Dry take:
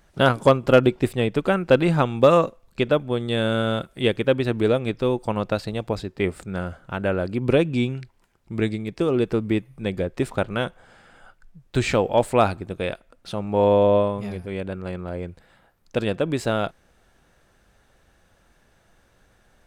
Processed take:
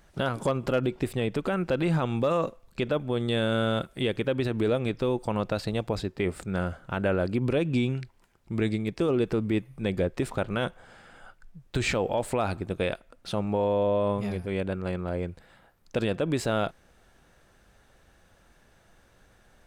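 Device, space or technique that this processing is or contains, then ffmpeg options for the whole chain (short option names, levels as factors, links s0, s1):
stacked limiters: -af "alimiter=limit=0.251:level=0:latency=1:release=121,alimiter=limit=0.141:level=0:latency=1:release=41"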